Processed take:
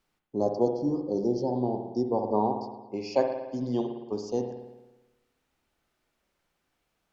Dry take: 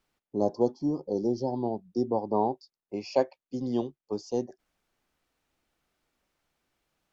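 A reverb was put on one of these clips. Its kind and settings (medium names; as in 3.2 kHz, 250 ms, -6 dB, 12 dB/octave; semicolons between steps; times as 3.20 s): spring tank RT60 1.1 s, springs 56 ms, chirp 55 ms, DRR 4.5 dB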